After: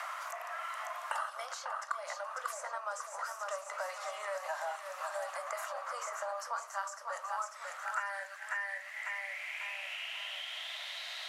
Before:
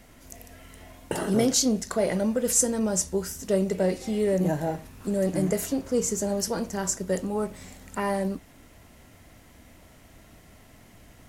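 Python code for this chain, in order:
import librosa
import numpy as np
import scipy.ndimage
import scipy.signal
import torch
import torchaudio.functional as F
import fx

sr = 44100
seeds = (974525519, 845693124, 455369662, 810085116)

p1 = fx.over_compress(x, sr, threshold_db=-28.0, ratio=-1.0)
p2 = x + (p1 * 10.0 ** (-2.0 / 20.0))
p3 = scipy.signal.sosfilt(scipy.signal.butter(12, 570.0, 'highpass', fs=sr, output='sos'), p2)
p4 = fx.high_shelf(p3, sr, hz=4700.0, db=9.5)
p5 = fx.echo_feedback(p4, sr, ms=545, feedback_pct=40, wet_db=-8)
p6 = fx.filter_sweep_bandpass(p5, sr, from_hz=1200.0, to_hz=3900.0, start_s=7.46, end_s=11.05, q=6.7)
p7 = fx.band_squash(p6, sr, depth_pct=100)
y = p7 * 10.0 ** (5.0 / 20.0)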